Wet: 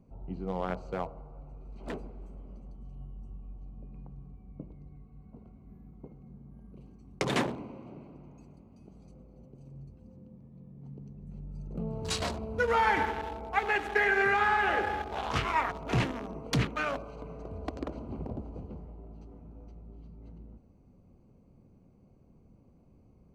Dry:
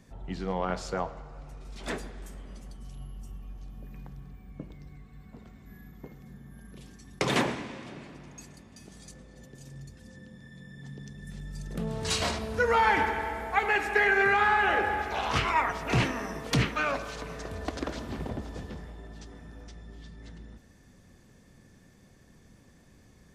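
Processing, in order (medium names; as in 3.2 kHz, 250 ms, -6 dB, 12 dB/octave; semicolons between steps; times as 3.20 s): local Wiener filter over 25 samples; trim -2 dB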